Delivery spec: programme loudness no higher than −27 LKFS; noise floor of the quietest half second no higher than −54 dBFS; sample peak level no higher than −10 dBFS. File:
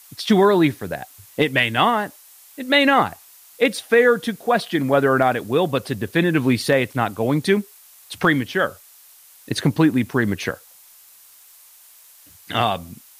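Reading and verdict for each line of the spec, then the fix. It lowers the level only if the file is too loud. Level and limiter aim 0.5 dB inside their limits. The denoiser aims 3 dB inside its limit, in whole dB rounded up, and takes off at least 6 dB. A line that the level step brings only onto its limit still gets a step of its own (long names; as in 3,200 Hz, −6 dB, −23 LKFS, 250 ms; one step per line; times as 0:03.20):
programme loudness −19.5 LKFS: out of spec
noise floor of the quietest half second −49 dBFS: out of spec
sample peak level −4.5 dBFS: out of spec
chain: level −8 dB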